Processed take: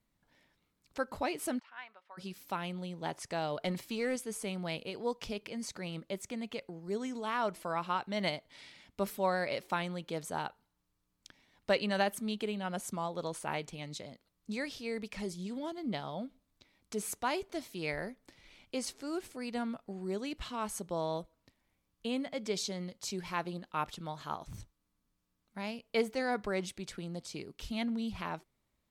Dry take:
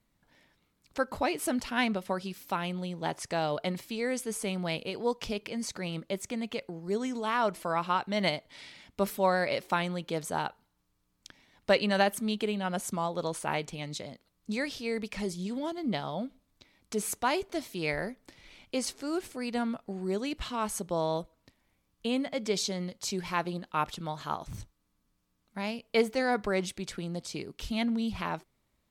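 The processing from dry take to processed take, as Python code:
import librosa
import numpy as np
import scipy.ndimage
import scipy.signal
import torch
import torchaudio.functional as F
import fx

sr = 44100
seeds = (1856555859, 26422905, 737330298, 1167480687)

y = fx.ladder_bandpass(x, sr, hz=1500.0, resonance_pct=20, at=(1.58, 2.17), fade=0.02)
y = fx.leveller(y, sr, passes=1, at=(3.61, 4.16))
y = F.gain(torch.from_numpy(y), -5.0).numpy()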